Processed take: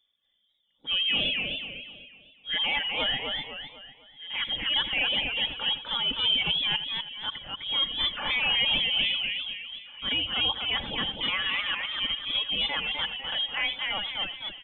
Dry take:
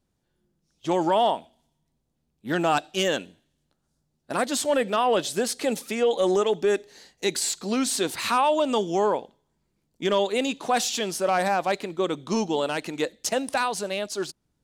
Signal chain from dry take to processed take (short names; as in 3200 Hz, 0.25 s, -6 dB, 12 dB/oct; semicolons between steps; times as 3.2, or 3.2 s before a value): bell 730 Hz -13 dB 0.48 oct; comb 3.4 ms, depth 50%; outdoor echo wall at 290 m, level -15 dB; reverb removal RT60 1.3 s; in parallel at -1 dB: limiter -21.5 dBFS, peak gain reduction 8.5 dB; on the sum: transient shaper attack -8 dB, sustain 0 dB; on a send: echo 84 ms -14.5 dB; on the sum: inverted band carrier 3500 Hz; warbling echo 0.25 s, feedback 42%, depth 142 cents, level -4 dB; gain -5 dB